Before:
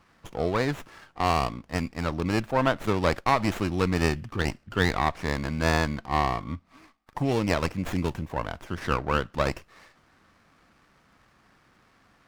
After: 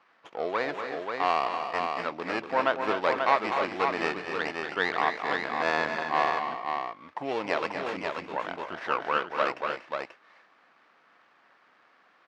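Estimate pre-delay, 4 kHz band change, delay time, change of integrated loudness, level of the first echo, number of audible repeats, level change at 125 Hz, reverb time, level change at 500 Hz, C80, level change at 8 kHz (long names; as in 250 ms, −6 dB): no reverb audible, −2.0 dB, 237 ms, −2.0 dB, −8.0 dB, 3, −20.5 dB, no reverb audible, −1.0 dB, no reverb audible, below −10 dB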